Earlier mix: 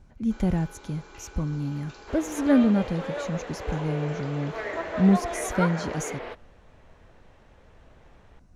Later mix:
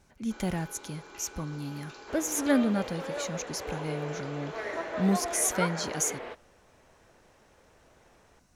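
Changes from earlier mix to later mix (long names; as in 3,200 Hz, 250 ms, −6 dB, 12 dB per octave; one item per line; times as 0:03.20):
speech: add spectral tilt +3 dB per octave
second sound −3.0 dB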